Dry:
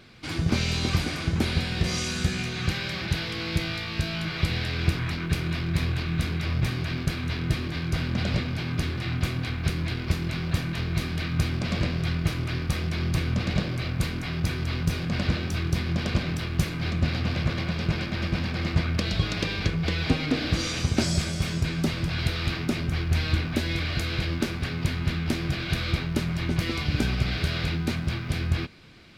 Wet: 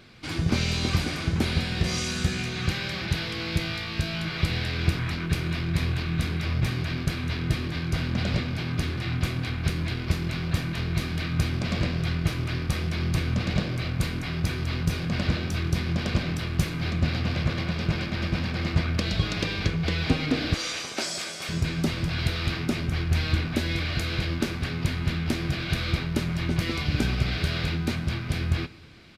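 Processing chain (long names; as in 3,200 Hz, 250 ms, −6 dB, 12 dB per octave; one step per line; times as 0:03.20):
0:20.54–0:21.49: high-pass filter 510 Hz 12 dB per octave
on a send at −17.5 dB: convolution reverb RT60 1.0 s, pre-delay 5 ms
on the sum: downsampling to 32,000 Hz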